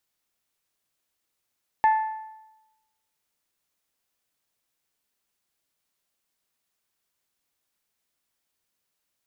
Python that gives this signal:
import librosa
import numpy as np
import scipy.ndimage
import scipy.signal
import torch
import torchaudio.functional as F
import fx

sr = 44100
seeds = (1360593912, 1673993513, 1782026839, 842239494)

y = fx.strike_metal(sr, length_s=1.55, level_db=-14, body='bell', hz=875.0, decay_s=1.0, tilt_db=12, modes=5)